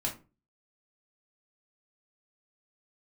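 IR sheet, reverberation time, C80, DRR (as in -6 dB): 0.30 s, 18.0 dB, -1.5 dB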